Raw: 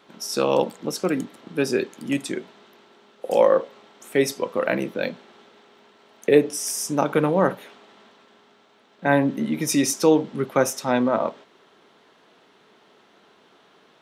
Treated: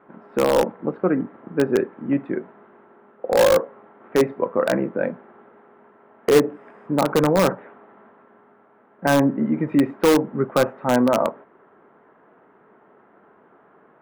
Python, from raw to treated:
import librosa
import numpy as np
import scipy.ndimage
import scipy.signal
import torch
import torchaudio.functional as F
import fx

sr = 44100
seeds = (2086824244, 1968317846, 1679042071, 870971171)

p1 = scipy.signal.sosfilt(scipy.signal.cheby2(4, 60, 5400.0, 'lowpass', fs=sr, output='sos'), x)
p2 = (np.mod(10.0 ** (11.5 / 20.0) * p1 + 1.0, 2.0) - 1.0) / 10.0 ** (11.5 / 20.0)
y = p1 + F.gain(torch.from_numpy(p2), -6.5).numpy()